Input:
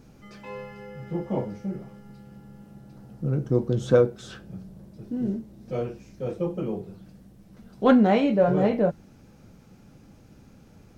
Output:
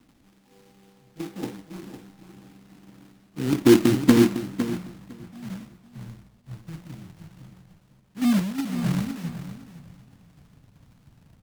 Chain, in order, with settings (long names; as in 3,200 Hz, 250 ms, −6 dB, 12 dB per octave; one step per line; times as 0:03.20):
loose part that buzzes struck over −28 dBFS, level −12 dBFS
high-shelf EQ 2,000 Hz −9.5 dB
reversed playback
upward compression, threshold −28 dBFS
reversed playback
low-pass filter sweep 2,500 Hz → 150 Hz, 0:01.07–0:04.74
formant resonators in series u
log-companded quantiser 4 bits
on a send: repeating echo 486 ms, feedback 35%, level −6.5 dB
on the sum: wrong playback speed 25 fps video run at 24 fps
multiband upward and downward expander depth 100%
level +2.5 dB